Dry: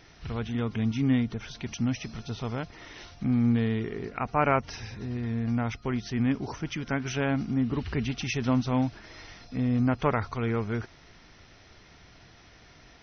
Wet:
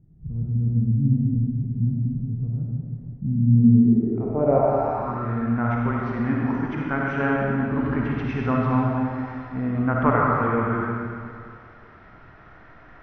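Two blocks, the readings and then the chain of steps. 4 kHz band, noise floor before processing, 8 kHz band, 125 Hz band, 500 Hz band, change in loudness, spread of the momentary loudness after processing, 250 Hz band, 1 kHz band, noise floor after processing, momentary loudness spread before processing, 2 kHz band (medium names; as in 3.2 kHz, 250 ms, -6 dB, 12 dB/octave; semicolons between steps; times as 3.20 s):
under -10 dB, -55 dBFS, no reading, +8.0 dB, +7.5 dB, +6.5 dB, 11 LU, +6.0 dB, +7.5 dB, -48 dBFS, 12 LU, +5.0 dB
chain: algorithmic reverb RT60 2.2 s, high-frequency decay 0.85×, pre-delay 15 ms, DRR -3 dB; low-pass sweep 160 Hz -> 1.4 kHz, 3.53–5.34 s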